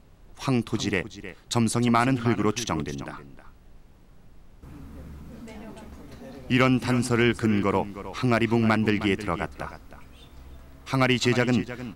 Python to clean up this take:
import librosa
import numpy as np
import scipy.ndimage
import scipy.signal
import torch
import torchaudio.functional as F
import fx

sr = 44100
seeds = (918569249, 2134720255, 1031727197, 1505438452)

y = fx.fix_declip(x, sr, threshold_db=-10.0)
y = fx.noise_reduce(y, sr, print_start_s=3.81, print_end_s=4.31, reduce_db=21.0)
y = fx.fix_echo_inverse(y, sr, delay_ms=312, level_db=-13.5)